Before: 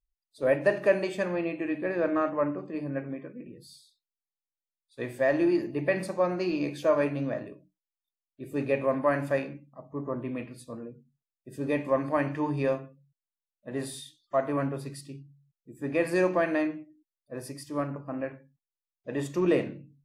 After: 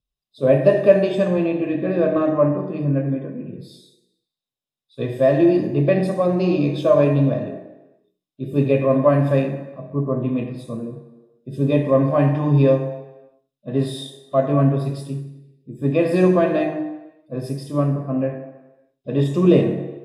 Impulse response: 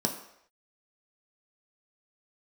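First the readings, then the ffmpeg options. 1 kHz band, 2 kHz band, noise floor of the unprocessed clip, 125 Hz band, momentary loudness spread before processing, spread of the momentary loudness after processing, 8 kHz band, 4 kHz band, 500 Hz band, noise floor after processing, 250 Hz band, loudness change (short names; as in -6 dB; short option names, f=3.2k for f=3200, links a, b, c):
+6.0 dB, +1.0 dB, under -85 dBFS, +17.5 dB, 17 LU, 16 LU, n/a, +8.5 dB, +9.5 dB, -85 dBFS, +11.0 dB, +10.0 dB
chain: -filter_complex "[1:a]atrim=start_sample=2205,asetrate=29106,aresample=44100[a];[0:a][a]afir=irnorm=-1:irlink=0,volume=-4dB"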